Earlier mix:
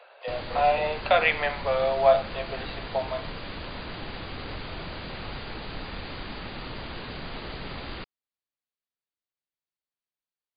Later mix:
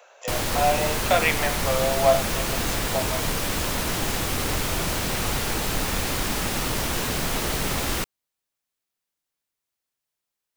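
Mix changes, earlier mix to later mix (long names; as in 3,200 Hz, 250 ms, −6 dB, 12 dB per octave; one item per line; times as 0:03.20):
background +10.0 dB
master: remove linear-phase brick-wall low-pass 4,900 Hz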